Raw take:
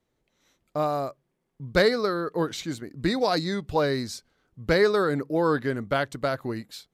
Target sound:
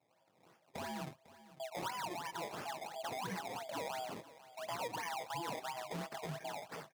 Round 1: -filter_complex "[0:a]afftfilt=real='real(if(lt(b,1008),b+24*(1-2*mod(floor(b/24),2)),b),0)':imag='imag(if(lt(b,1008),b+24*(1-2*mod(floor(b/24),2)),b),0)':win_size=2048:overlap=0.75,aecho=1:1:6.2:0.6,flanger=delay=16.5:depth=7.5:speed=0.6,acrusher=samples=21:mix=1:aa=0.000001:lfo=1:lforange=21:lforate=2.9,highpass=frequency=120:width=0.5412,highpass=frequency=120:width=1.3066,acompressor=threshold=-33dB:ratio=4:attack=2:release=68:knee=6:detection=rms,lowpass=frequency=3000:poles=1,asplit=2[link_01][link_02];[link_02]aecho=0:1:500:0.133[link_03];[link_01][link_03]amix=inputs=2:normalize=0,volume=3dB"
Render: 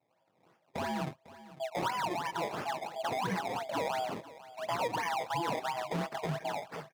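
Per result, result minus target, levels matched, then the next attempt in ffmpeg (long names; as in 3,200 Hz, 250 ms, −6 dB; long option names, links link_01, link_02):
downward compressor: peak gain reduction −8.5 dB; 8,000 Hz band −5.5 dB
-filter_complex "[0:a]afftfilt=real='real(if(lt(b,1008),b+24*(1-2*mod(floor(b/24),2)),b),0)':imag='imag(if(lt(b,1008),b+24*(1-2*mod(floor(b/24),2)),b),0)':win_size=2048:overlap=0.75,aecho=1:1:6.2:0.6,flanger=delay=16.5:depth=7.5:speed=0.6,acrusher=samples=21:mix=1:aa=0.000001:lfo=1:lforange=21:lforate=2.9,highpass=frequency=120:width=0.5412,highpass=frequency=120:width=1.3066,acompressor=threshold=-44.5dB:ratio=4:attack=2:release=68:knee=6:detection=rms,lowpass=frequency=3000:poles=1,asplit=2[link_01][link_02];[link_02]aecho=0:1:500:0.133[link_03];[link_01][link_03]amix=inputs=2:normalize=0,volume=3dB"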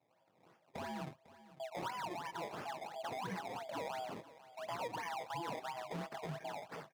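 8,000 Hz band −5.5 dB
-filter_complex "[0:a]afftfilt=real='real(if(lt(b,1008),b+24*(1-2*mod(floor(b/24),2)),b),0)':imag='imag(if(lt(b,1008),b+24*(1-2*mod(floor(b/24),2)),b),0)':win_size=2048:overlap=0.75,aecho=1:1:6.2:0.6,flanger=delay=16.5:depth=7.5:speed=0.6,acrusher=samples=21:mix=1:aa=0.000001:lfo=1:lforange=21:lforate=2.9,highpass=frequency=120:width=0.5412,highpass=frequency=120:width=1.3066,acompressor=threshold=-44.5dB:ratio=4:attack=2:release=68:knee=6:detection=rms,lowpass=frequency=10000:poles=1,asplit=2[link_01][link_02];[link_02]aecho=0:1:500:0.133[link_03];[link_01][link_03]amix=inputs=2:normalize=0,volume=3dB"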